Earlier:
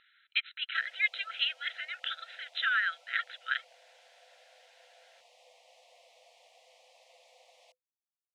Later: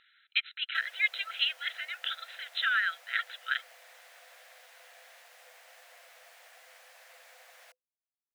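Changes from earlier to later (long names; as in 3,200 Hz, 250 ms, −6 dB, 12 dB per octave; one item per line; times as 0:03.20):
background: remove Butterworth band-reject 1,500 Hz, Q 0.84
master: remove high-frequency loss of the air 85 metres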